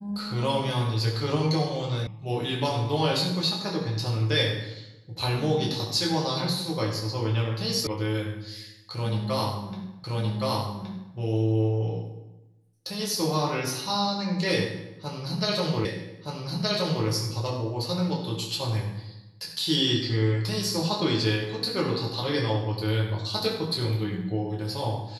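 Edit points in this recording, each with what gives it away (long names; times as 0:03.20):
0:02.07: cut off before it has died away
0:07.87: cut off before it has died away
0:10.04: the same again, the last 1.12 s
0:15.85: the same again, the last 1.22 s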